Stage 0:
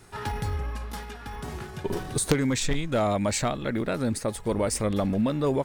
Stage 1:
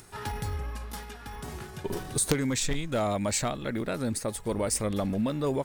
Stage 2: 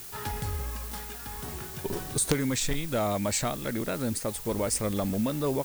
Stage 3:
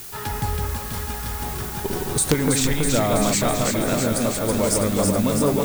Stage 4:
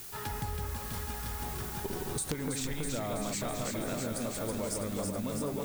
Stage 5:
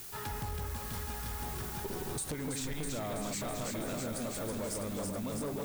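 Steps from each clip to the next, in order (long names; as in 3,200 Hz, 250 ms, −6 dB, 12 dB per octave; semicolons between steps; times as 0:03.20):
upward compression, threshold −46 dBFS; high-shelf EQ 6,000 Hz +7 dB; level −3.5 dB
background noise blue −43 dBFS
delay that swaps between a low-pass and a high-pass 163 ms, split 1,700 Hz, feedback 85%, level −2.5 dB; level +5.5 dB
downward compressor 4 to 1, threshold −24 dBFS, peak gain reduction 9 dB; level −8 dB
hard clipping −31.5 dBFS, distortion −14 dB; level −1 dB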